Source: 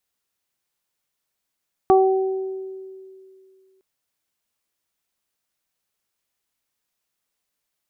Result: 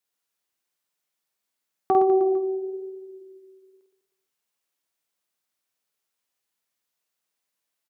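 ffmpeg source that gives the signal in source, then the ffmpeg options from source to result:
-f lavfi -i "aevalsrc='0.266*pow(10,-3*t/2.44)*sin(2*PI*381*t)+0.224*pow(10,-3*t/1.04)*sin(2*PI*762*t)+0.0794*pow(10,-3*t/0.28)*sin(2*PI*1143*t)':duration=1.91:sample_rate=44100"
-af "highpass=frequency=190:poles=1,flanger=delay=6.2:depth=9.1:regen=-66:speed=1:shape=sinusoidal,aecho=1:1:50|115|199.5|309.4|452.2:0.631|0.398|0.251|0.158|0.1"

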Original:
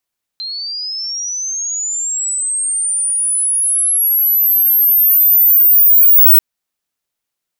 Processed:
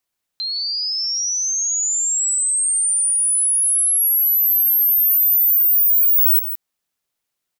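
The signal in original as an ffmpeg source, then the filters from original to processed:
-f lavfi -i "aevalsrc='pow(10,(-21.5+18*t/5.99)/20)*sin(2*PI*(4100*t+11900*t*t/(2*5.99)))':duration=5.99:sample_rate=44100"
-filter_complex "[0:a]acompressor=threshold=-17dB:ratio=2.5,asplit=2[link_01][link_02];[link_02]aecho=0:1:163:0.299[link_03];[link_01][link_03]amix=inputs=2:normalize=0"

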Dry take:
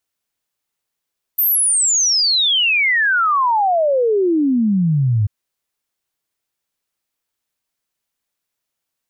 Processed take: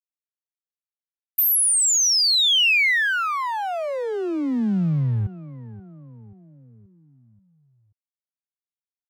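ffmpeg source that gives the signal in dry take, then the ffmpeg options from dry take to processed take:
-f lavfi -i "aevalsrc='0.237*clip(min(t,3.89-t)/0.01,0,1)*sin(2*PI*14000*3.89/log(100/14000)*(exp(log(100/14000)*t/3.89)-1))':duration=3.89:sample_rate=44100"
-filter_complex "[0:a]acrossover=split=180|2100[link_01][link_02][link_03];[link_01]acompressor=threshold=-24dB:ratio=4[link_04];[link_02]acompressor=threshold=-27dB:ratio=4[link_05];[link_03]acompressor=threshold=-17dB:ratio=4[link_06];[link_04][link_05][link_06]amix=inputs=3:normalize=0,aeval=exprs='sgn(val(0))*max(abs(val(0))-0.00708,0)':channel_layout=same,asplit=2[link_07][link_08];[link_08]adelay=531,lowpass=frequency=2300:poles=1,volume=-17dB,asplit=2[link_09][link_10];[link_10]adelay=531,lowpass=frequency=2300:poles=1,volume=0.52,asplit=2[link_11][link_12];[link_12]adelay=531,lowpass=frequency=2300:poles=1,volume=0.52,asplit=2[link_13][link_14];[link_14]adelay=531,lowpass=frequency=2300:poles=1,volume=0.52,asplit=2[link_15][link_16];[link_16]adelay=531,lowpass=frequency=2300:poles=1,volume=0.52[link_17];[link_07][link_09][link_11][link_13][link_15][link_17]amix=inputs=6:normalize=0"

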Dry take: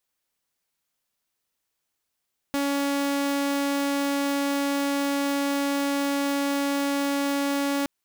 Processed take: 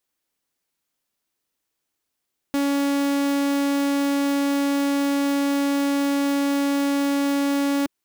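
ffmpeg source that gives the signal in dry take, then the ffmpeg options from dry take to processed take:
-f lavfi -i "aevalsrc='0.0944*(2*mod(281*t,1)-1)':duration=5.32:sample_rate=44100"
-af "equalizer=frequency=310:width=1.5:gain=5.5"

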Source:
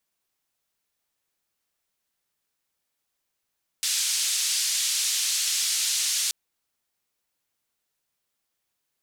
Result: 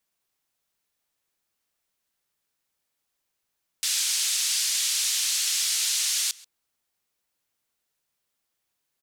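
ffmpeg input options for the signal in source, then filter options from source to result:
-f lavfi -i "anoisesrc=color=white:duration=2.48:sample_rate=44100:seed=1,highpass=frequency=3700,lowpass=frequency=7600,volume=-13.3dB"
-filter_complex "[0:a]asplit=2[link_01][link_02];[link_02]adelay=134.1,volume=-21dB,highshelf=frequency=4000:gain=-3.02[link_03];[link_01][link_03]amix=inputs=2:normalize=0"

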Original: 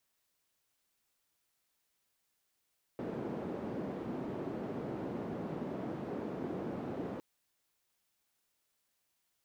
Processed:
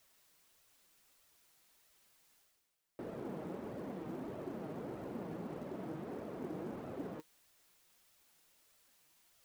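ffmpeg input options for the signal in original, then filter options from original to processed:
-f lavfi -i "anoisesrc=color=white:duration=4.21:sample_rate=44100:seed=1,highpass=frequency=190,lowpass=frequency=330,volume=-13.7dB"
-af "areverse,acompressor=mode=upward:threshold=-52dB:ratio=2.5,areverse,acrusher=bits=7:mode=log:mix=0:aa=0.000001,flanger=delay=1.5:depth=5:regen=47:speed=1.6:shape=sinusoidal"

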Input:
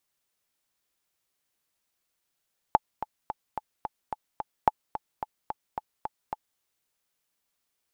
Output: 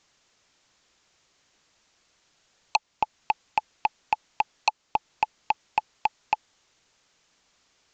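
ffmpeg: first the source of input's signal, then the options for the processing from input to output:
-f lavfi -i "aevalsrc='pow(10,(-5-13*gte(mod(t,7*60/218),60/218))/20)*sin(2*PI*860*mod(t,60/218))*exp(-6.91*mod(t,60/218)/0.03)':duration=3.85:sample_rate=44100"
-af "alimiter=limit=-12.5dB:level=0:latency=1:release=488,aresample=16000,aeval=exprs='0.251*sin(PI/2*4.47*val(0)/0.251)':channel_layout=same,aresample=44100"

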